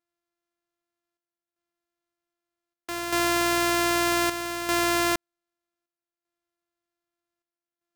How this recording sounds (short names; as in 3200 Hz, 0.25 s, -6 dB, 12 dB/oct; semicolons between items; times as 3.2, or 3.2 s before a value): a buzz of ramps at a fixed pitch in blocks of 128 samples; chopped level 0.64 Hz, depth 60%, duty 75%